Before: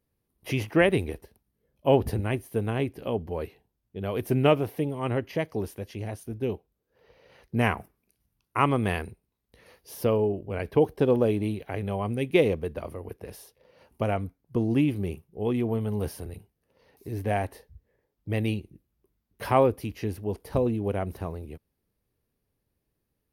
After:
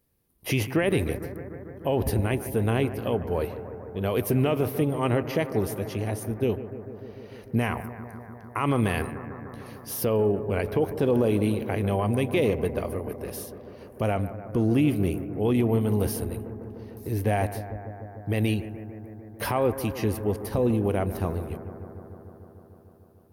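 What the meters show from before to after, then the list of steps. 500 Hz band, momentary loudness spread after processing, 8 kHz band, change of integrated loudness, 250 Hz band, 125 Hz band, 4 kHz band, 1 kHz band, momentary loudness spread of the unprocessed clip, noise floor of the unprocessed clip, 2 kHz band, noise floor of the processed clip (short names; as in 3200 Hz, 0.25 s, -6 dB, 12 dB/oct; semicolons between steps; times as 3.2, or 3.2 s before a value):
+0.5 dB, 16 LU, +8.5 dB, +1.0 dB, +2.5 dB, +3.0 dB, +1.0 dB, -1.0 dB, 17 LU, -80 dBFS, 0.0 dB, -50 dBFS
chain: high shelf 7500 Hz +7.5 dB; limiter -19 dBFS, peak gain reduction 11 dB; analogue delay 0.149 s, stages 2048, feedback 81%, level -13 dB; gain +4.5 dB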